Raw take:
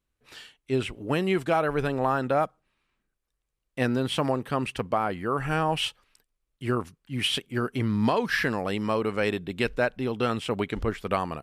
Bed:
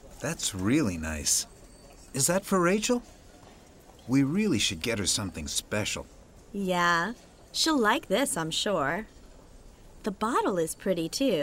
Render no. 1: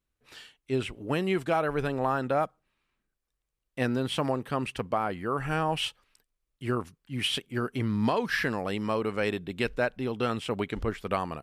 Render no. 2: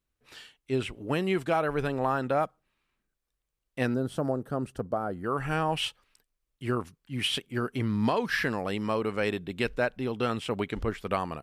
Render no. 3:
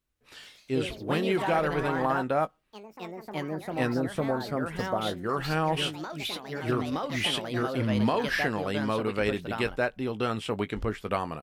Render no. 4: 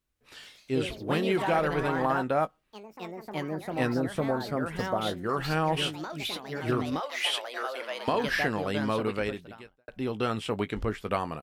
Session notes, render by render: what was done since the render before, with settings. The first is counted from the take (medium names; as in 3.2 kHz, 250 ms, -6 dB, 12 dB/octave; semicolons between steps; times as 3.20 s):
trim -2.5 dB
3.94–5.24 s: FFT filter 670 Hz 0 dB, 1 kHz -10 dB, 1.4 kHz -3 dB, 2.3 kHz -21 dB, 5.7 kHz -7 dB, 13 kHz -4 dB
ever faster or slower copies 162 ms, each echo +3 st, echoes 3, each echo -6 dB; doubling 19 ms -12.5 dB
7.00–8.08 s: high-pass 530 Hz 24 dB/octave; 9.10–9.88 s: fade out quadratic